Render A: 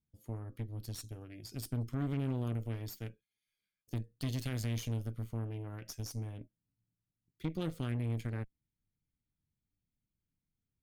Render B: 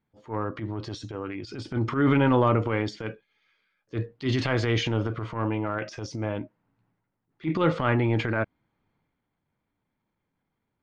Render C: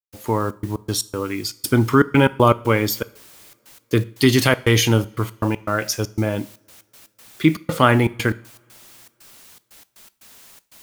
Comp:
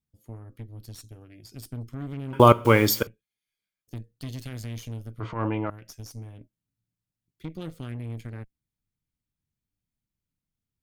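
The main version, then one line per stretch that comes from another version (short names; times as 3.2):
A
2.33–3.07 from C
5.2–5.7 from B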